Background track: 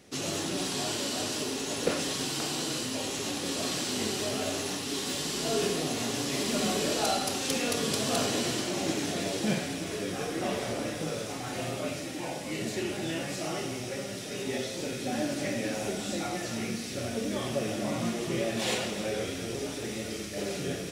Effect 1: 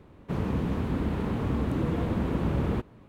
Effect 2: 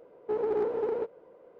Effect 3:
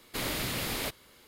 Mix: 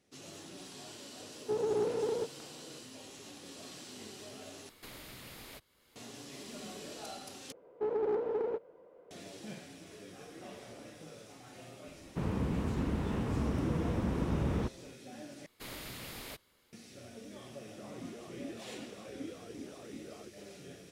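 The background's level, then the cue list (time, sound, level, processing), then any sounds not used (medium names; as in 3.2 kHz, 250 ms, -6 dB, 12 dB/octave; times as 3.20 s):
background track -17 dB
1.20 s: add 2 -4.5 dB + peaking EQ 130 Hz +12 dB 1.3 oct
4.69 s: replace with 3 -16.5 dB + three bands compressed up and down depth 70%
7.52 s: replace with 2 -3.5 dB
11.87 s: add 1 -5 dB
15.46 s: replace with 3 -12 dB
17.48 s: add 1 -7 dB + talking filter a-i 2.6 Hz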